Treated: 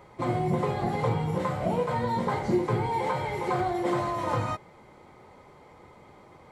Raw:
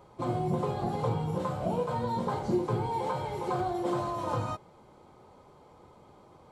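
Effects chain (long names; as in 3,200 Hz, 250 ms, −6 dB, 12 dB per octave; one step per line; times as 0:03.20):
parametric band 2,000 Hz +12.5 dB 0.42 octaves
level +3 dB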